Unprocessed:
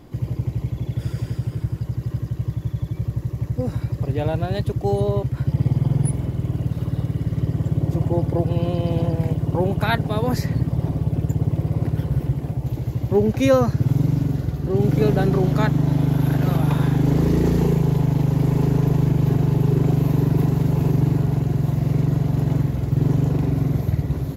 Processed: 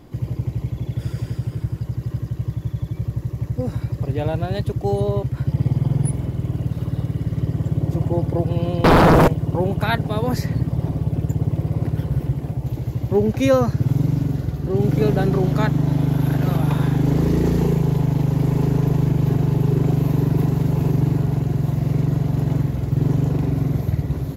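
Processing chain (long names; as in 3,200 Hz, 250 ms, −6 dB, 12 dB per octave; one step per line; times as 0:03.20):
0:08.84–0:09.28: sine wavefolder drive 16 dB, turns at −8 dBFS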